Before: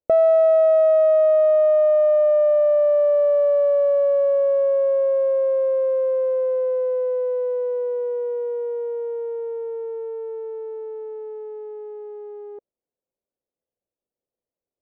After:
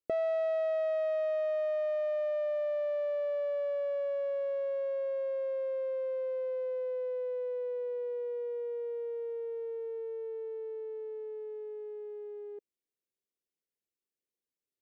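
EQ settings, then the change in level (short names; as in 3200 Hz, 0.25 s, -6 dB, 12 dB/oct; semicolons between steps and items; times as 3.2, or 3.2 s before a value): low shelf 250 Hz -10.5 dB; band shelf 860 Hz -12 dB; -2.0 dB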